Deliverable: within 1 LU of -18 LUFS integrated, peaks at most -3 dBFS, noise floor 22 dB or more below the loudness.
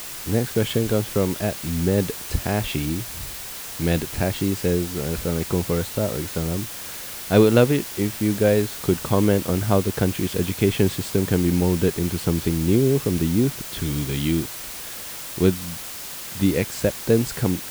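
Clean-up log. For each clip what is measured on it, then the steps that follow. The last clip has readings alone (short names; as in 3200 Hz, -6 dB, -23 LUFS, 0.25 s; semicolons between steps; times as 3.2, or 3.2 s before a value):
noise floor -35 dBFS; noise floor target -45 dBFS; loudness -22.5 LUFS; peak -4.0 dBFS; loudness target -18.0 LUFS
-> denoiser 10 dB, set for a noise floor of -35 dBFS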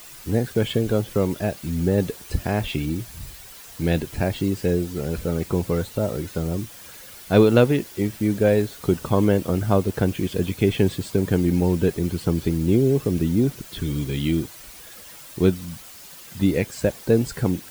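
noise floor -43 dBFS; noise floor target -45 dBFS
-> denoiser 6 dB, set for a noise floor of -43 dBFS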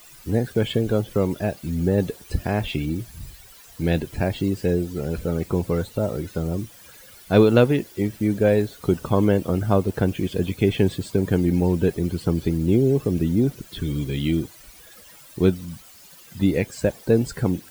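noise floor -47 dBFS; loudness -23.0 LUFS; peak -4.5 dBFS; loudness target -18.0 LUFS
-> gain +5 dB; limiter -3 dBFS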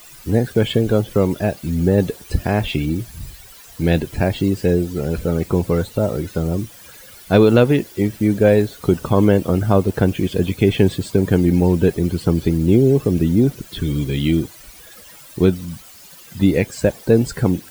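loudness -18.0 LUFS; peak -3.0 dBFS; noise floor -42 dBFS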